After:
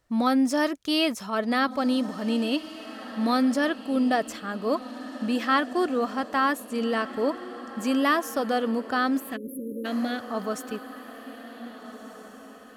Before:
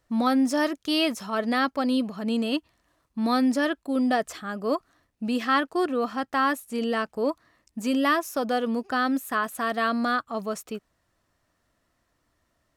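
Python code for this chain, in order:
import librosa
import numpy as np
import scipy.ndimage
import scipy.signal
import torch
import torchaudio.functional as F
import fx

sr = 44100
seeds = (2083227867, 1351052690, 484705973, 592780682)

y = fx.fixed_phaser(x, sr, hz=2800.0, stages=4, at=(9.2, 10.3))
y = fx.echo_diffused(y, sr, ms=1671, feedback_pct=41, wet_db=-13.5)
y = fx.spec_erase(y, sr, start_s=9.36, length_s=0.49, low_hz=560.0, high_hz=9600.0)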